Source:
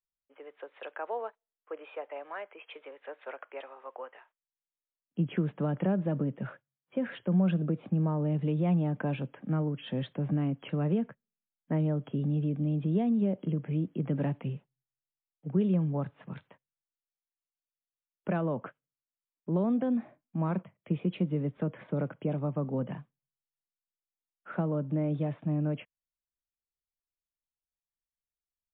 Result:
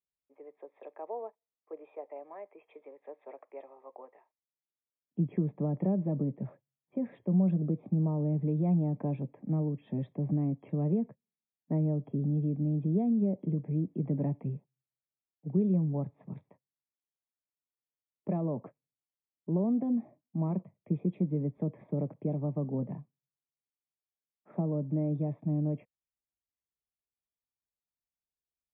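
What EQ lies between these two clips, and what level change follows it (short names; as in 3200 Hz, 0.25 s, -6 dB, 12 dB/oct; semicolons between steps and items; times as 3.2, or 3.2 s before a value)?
running mean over 30 samples; HPF 46 Hz; notch 510 Hz, Q 12; 0.0 dB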